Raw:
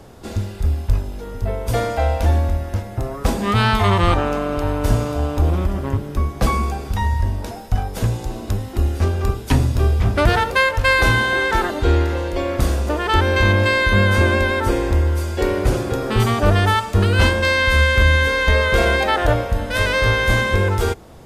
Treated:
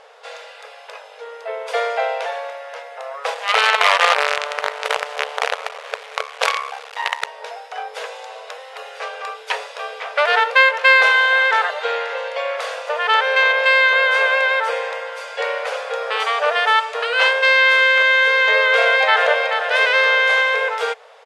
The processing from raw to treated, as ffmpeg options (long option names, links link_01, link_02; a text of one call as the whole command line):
ffmpeg -i in.wav -filter_complex "[0:a]asettb=1/sr,asplit=3[link_01][link_02][link_03];[link_01]atrim=end=3.344[link_04];[link_02]atrim=start=3.34:end=7.27,asetpts=PTS-STARTPTS,afade=type=in:duration=0.004:curve=qsin,afade=type=out:start_time=3.926:duration=0.004:curve=qsin,acrusher=bits=3:dc=4:mix=0:aa=0.000001[link_05];[link_03]atrim=start=7.266[link_06];[link_04][link_05]acrossfade=duration=0.004:curve1=hsin:curve2=qsin[link_07];[link_07][link_06]acrossfade=duration=0.004:curve1=qsin:curve2=hsin,asplit=2[link_08][link_09];[link_09]afade=type=in:start_time=18.6:duration=0.01,afade=type=out:start_time=19.44:duration=0.01,aecho=0:1:430|860|1290|1720:0.501187|0.150356|0.0451069|0.0135321[link_10];[link_08][link_10]amix=inputs=2:normalize=0,aemphasis=mode=reproduction:type=50fm,afftfilt=real='re*between(b*sr/4096,430,12000)':imag='im*between(b*sr/4096,430,12000)':win_size=4096:overlap=0.75,equalizer=frequency=2500:width_type=o:width=2.1:gain=8.5,volume=-1dB" out.wav